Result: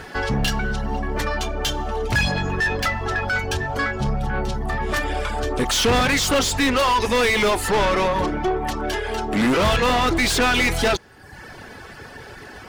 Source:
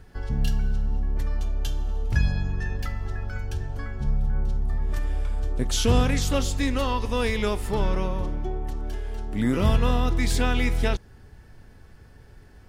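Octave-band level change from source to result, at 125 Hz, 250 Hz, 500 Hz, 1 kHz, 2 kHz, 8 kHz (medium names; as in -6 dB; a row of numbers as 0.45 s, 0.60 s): -0.5 dB, +4.5 dB, +8.0 dB, +11.5 dB, +13.0 dB, +8.5 dB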